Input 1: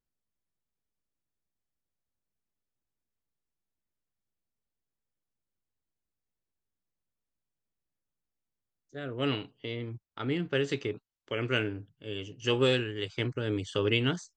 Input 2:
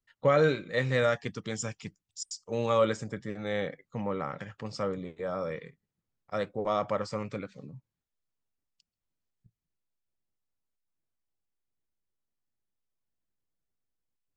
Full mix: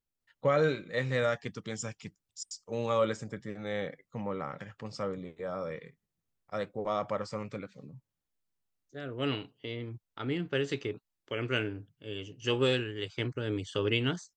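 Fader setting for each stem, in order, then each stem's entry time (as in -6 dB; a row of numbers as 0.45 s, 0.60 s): -2.0 dB, -3.0 dB; 0.00 s, 0.20 s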